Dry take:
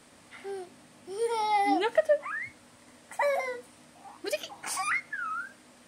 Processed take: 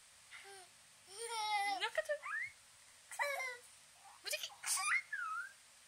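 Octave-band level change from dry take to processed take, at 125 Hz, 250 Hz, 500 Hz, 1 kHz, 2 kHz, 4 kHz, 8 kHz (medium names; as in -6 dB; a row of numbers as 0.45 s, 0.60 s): no reading, -30.0 dB, -17.5 dB, -12.0 dB, -6.0 dB, -3.5 dB, -2.0 dB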